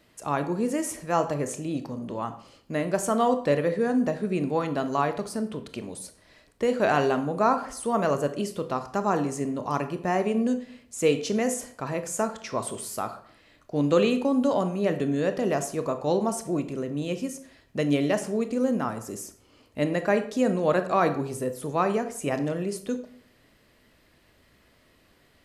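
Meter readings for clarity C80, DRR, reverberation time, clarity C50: 15.5 dB, 8.5 dB, 0.60 s, 12.0 dB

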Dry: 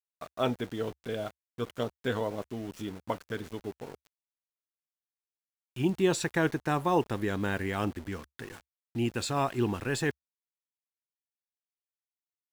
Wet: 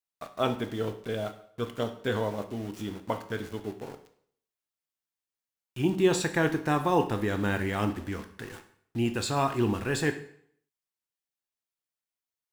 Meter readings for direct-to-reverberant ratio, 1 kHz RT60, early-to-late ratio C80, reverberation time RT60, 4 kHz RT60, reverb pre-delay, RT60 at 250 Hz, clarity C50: 7.5 dB, 0.60 s, 15.0 dB, 0.65 s, 0.55 s, 6 ms, 0.55 s, 11.5 dB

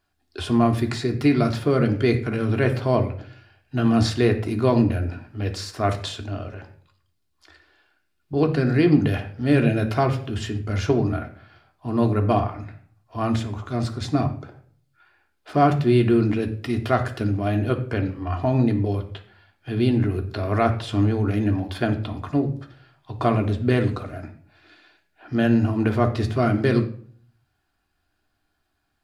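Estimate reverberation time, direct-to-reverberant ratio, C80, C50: 0.55 s, 3.0 dB, 15.0 dB, 11.5 dB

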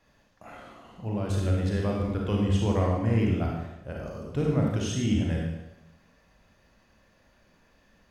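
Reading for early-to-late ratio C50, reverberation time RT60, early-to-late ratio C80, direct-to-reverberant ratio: 0.5 dB, 0.90 s, 3.5 dB, −2.0 dB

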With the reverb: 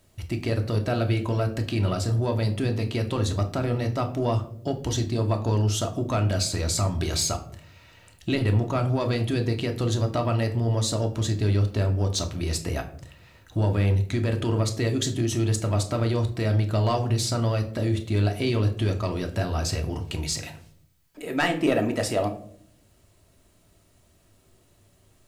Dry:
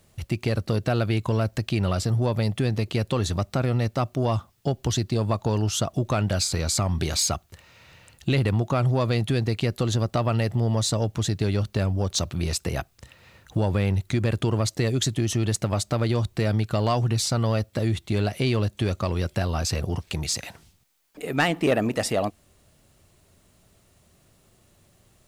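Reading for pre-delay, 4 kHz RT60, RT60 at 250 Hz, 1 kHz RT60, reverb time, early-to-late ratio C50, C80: 3 ms, 0.35 s, 0.95 s, 0.45 s, 0.60 s, 12.5 dB, 16.0 dB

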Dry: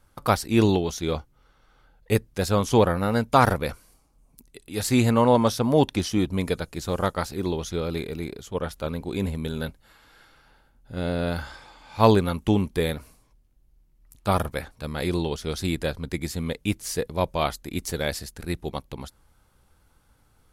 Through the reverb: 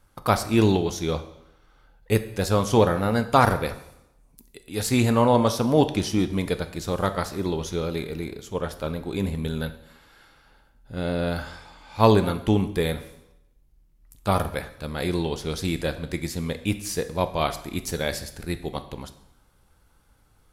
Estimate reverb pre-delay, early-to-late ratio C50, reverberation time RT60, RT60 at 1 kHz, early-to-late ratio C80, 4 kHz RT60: 5 ms, 13.0 dB, 0.85 s, 0.85 s, 15.5 dB, 0.75 s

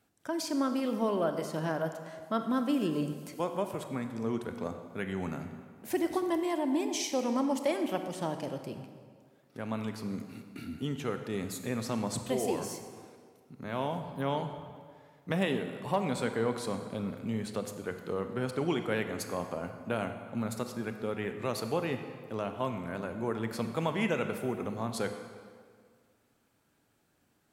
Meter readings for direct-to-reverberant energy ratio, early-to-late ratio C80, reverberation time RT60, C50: 7.0 dB, 9.0 dB, 1.9 s, 8.0 dB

